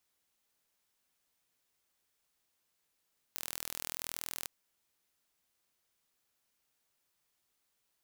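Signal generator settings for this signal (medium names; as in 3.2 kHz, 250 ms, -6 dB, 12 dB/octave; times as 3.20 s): pulse train 41 per s, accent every 0, -11.5 dBFS 1.11 s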